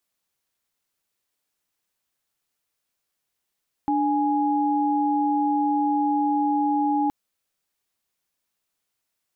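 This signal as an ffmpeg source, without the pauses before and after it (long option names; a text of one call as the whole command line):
ffmpeg -f lavfi -i "aevalsrc='0.0794*(sin(2*PI*293.66*t)+sin(2*PI*830.61*t))':duration=3.22:sample_rate=44100" out.wav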